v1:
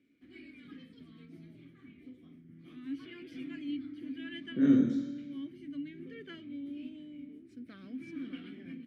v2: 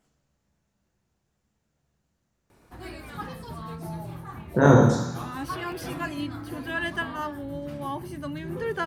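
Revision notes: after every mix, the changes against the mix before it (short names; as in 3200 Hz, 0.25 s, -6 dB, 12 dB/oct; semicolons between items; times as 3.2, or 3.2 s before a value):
background: entry +2.50 s; master: remove vowel filter i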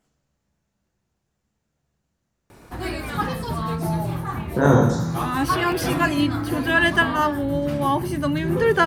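background +11.5 dB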